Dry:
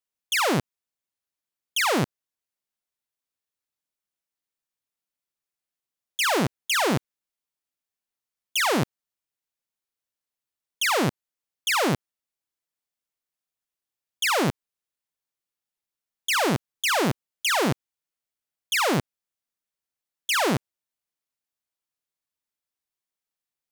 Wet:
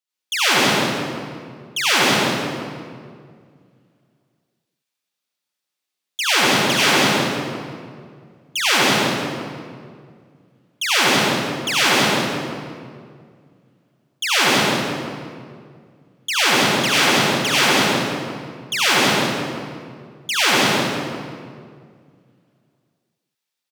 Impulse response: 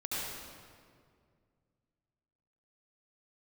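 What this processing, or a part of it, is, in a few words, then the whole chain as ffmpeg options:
PA in a hall: -filter_complex "[0:a]highpass=140,equalizer=frequency=4000:width_type=o:width=2.1:gain=7,aecho=1:1:189:0.562[link_01];[1:a]atrim=start_sample=2205[link_02];[link_01][link_02]afir=irnorm=-1:irlink=0"

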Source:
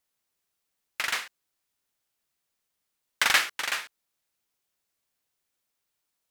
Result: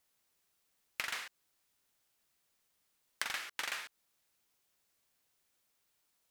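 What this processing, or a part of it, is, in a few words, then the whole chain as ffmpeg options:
serial compression, leveller first: -af "acompressor=threshold=-27dB:ratio=2.5,acompressor=threshold=-38dB:ratio=8,volume=3dB"

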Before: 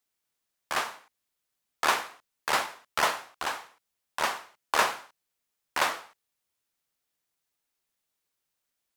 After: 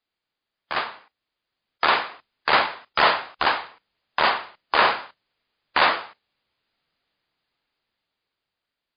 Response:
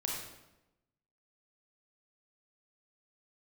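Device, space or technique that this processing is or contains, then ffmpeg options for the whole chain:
low-bitrate web radio: -af "dynaudnorm=framelen=570:gausssize=7:maxgain=14.5dB,alimiter=limit=-9dB:level=0:latency=1:release=30,volume=3.5dB" -ar 11025 -c:a libmp3lame -b:a 32k

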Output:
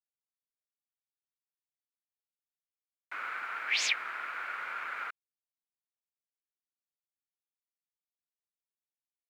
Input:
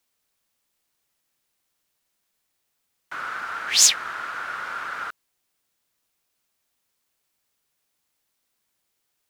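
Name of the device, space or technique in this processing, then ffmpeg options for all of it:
pocket radio on a weak battery: -af "highpass=300,lowpass=3200,aeval=exprs='sgn(val(0))*max(abs(val(0))-0.00251,0)':channel_layout=same,equalizer=frequency=2300:width_type=o:width=0.53:gain=11,volume=-8dB"

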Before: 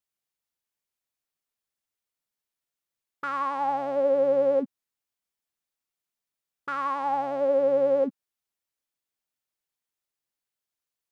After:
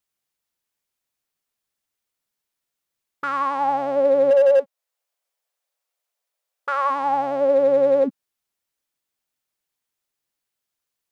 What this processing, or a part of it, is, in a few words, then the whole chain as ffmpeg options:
limiter into clipper: -filter_complex "[0:a]asplit=3[link_01][link_02][link_03];[link_01]afade=type=out:start_time=4.3:duration=0.02[link_04];[link_02]lowshelf=frequency=380:width_type=q:width=3:gain=-12.5,afade=type=in:start_time=4.3:duration=0.02,afade=type=out:start_time=6.89:duration=0.02[link_05];[link_03]afade=type=in:start_time=6.89:duration=0.02[link_06];[link_04][link_05][link_06]amix=inputs=3:normalize=0,alimiter=limit=-14.5dB:level=0:latency=1:release=393,asoftclip=type=hard:threshold=-16.5dB,volume=5.5dB"

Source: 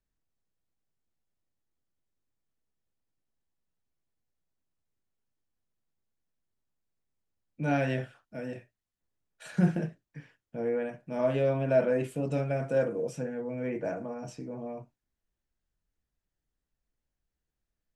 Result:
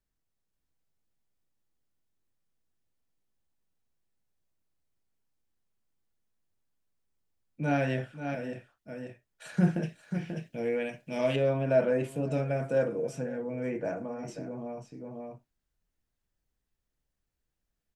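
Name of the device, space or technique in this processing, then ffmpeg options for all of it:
ducked delay: -filter_complex "[0:a]asettb=1/sr,asplit=3[link_01][link_02][link_03];[link_01]atrim=end=9.834[link_04];[link_02]atrim=start=9.83:end=11.36,asetpts=PTS-STARTPTS,afade=type=in:duration=0.004:curve=qsin,afade=type=out:start_time=1.526:duration=0.004:curve=qsin,highshelf=frequency=1900:width_type=q:width=1.5:gain=9.5[link_05];[link_03]atrim=start=11.356[link_06];[link_04][link_05]acrossfade=duration=0.004:curve1=hsin:curve2=qsin[link_07];[link_07][link_06]acrossfade=duration=0.004:curve1=qsin:curve2=hsin,asplit=3[link_08][link_09][link_10];[link_09]adelay=537,volume=-3dB[link_11];[link_10]apad=whole_len=815634[link_12];[link_11][link_12]sidechaincompress=threshold=-47dB:ratio=8:attack=16:release=282[link_13];[link_08][link_13]amix=inputs=2:normalize=0"

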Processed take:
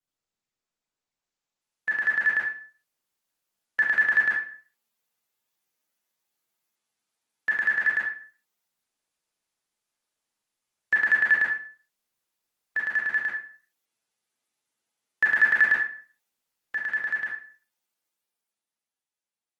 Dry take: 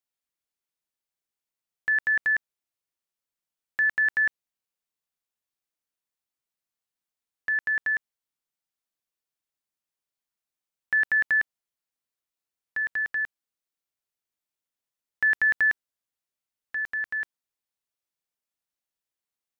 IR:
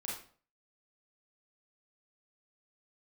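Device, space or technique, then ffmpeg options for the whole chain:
far-field microphone of a smart speaker: -filter_complex "[1:a]atrim=start_sample=2205[link_01];[0:a][link_01]afir=irnorm=-1:irlink=0,highpass=130,dynaudnorm=framelen=270:gausssize=13:maxgain=11.5dB,volume=-2.5dB" -ar 48000 -c:a libopus -b:a 16k

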